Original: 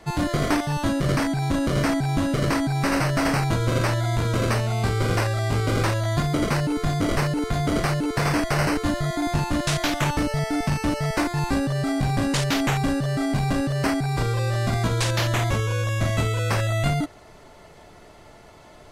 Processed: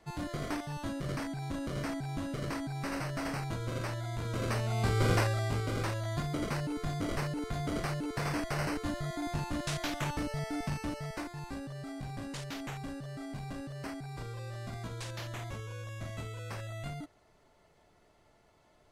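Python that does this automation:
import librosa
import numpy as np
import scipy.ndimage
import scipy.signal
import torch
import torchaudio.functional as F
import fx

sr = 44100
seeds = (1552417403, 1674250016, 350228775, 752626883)

y = fx.gain(x, sr, db=fx.line((4.16, -14.0), (5.09, -4.0), (5.7, -11.5), (10.71, -11.5), (11.39, -18.0)))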